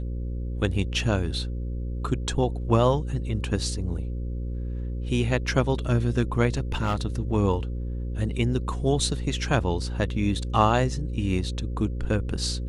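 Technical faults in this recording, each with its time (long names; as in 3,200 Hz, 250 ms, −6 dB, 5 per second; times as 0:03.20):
mains buzz 60 Hz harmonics 9 −30 dBFS
0:06.57–0:07.02: clipping −20 dBFS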